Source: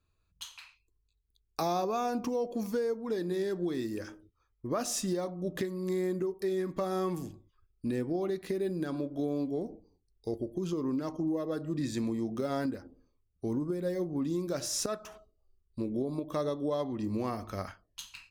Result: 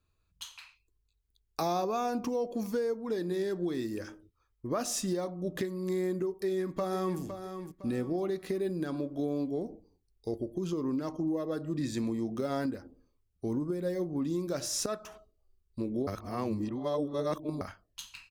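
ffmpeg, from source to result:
-filter_complex "[0:a]asplit=2[a][b];[b]afade=t=in:st=6.28:d=0.01,afade=t=out:st=7.2:d=0.01,aecho=0:1:510|1020|1530|2040:0.354813|0.124185|0.0434646|0.0152126[c];[a][c]amix=inputs=2:normalize=0,asplit=3[d][e][f];[d]atrim=end=16.072[g];[e]atrim=start=16.068:end=17.612,asetpts=PTS-STARTPTS,areverse[h];[f]atrim=start=17.608[i];[g][h]acrossfade=d=0.004:c1=hsin:c2=hsin[j];[j][i]acrossfade=d=0.004:c1=hsin:c2=hsin"

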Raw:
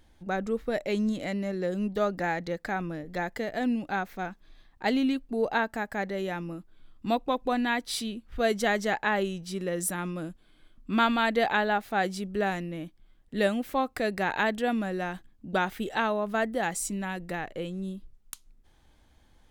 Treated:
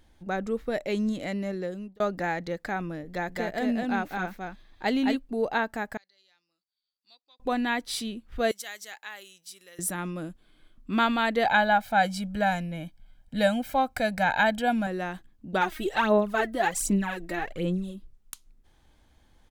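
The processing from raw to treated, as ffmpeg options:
-filter_complex "[0:a]asplit=3[a][b][c];[a]afade=t=out:st=3.28:d=0.02[d];[b]aecho=1:1:217:0.708,afade=t=in:st=3.28:d=0.02,afade=t=out:st=5.14:d=0.02[e];[c]afade=t=in:st=5.14:d=0.02[f];[d][e][f]amix=inputs=3:normalize=0,asettb=1/sr,asplit=3[g][h][i];[g]atrim=end=5.974[j];[h]atrim=start=5.97:end=7.4,asetpts=PTS-STARTPTS,afade=t=in:d=0.004:c=qsin,afade=t=out:st=1.426:d=0.004:c=qsin,bandpass=f=4.6k:t=q:w=14[k];[i]atrim=start=7.396[l];[j][k]acrossfade=d=0.004:c1=hsin:c2=qsin[m];[m][l]acrossfade=d=0.004:c1=qsin:c2=hsin,asettb=1/sr,asplit=3[n][o][p];[n]atrim=end=8.514[q];[o]atrim=start=8.51:end=9.79,asetpts=PTS-STARTPTS,afade=t=in:d=0.004:c=qsin,afade=t=out:st=1.276:d=0.004:c=qsin,aderivative[r];[p]atrim=start=9.786[s];[q][r]acrossfade=d=0.004:c1=hsin:c2=qsin[t];[t][s]acrossfade=d=0.004:c1=qsin:c2=hsin,asettb=1/sr,asplit=3[u][v][w];[u]atrim=end=11.454[x];[v]atrim=start=11.45:end=14.87,asetpts=PTS-STARTPTS,afade=t=in:d=0.004:c=qsin,afade=t=out:st=3.416:d=0.004:c=qsin,aecho=1:1:1.3:0.97,atrim=end_sample=150822[y];[w]atrim=start=14.866[z];[x][y]acrossfade=d=0.004:c1=hsin:c2=qsin[aa];[aa][z]acrossfade=d=0.004:c1=qsin:c2=hsin,asplit=3[ab][ac][ad];[ab]afade=t=out:st=15.6:d=0.02[ae];[ac]aphaser=in_gain=1:out_gain=1:delay=3.2:decay=0.68:speed=1.3:type=sinusoidal,afade=t=in:st=15.6:d=0.02,afade=t=out:st=17.94:d=0.02[af];[ad]afade=t=in:st=17.94:d=0.02[ag];[ae][af][ag]amix=inputs=3:normalize=0,asplit=2[ah][ai];[ah]atrim=end=2,asetpts=PTS-STARTPTS,afade=t=out:st=1.52:d=0.48[aj];[ai]atrim=start=2,asetpts=PTS-STARTPTS,afade=t=in:d=0.004:c=hsin[ak];[aj][ak]concat=n=2:v=0:a=1"

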